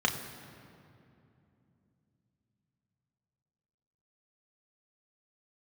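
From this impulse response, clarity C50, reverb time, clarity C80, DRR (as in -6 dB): 8.5 dB, 2.7 s, 9.0 dB, 1.5 dB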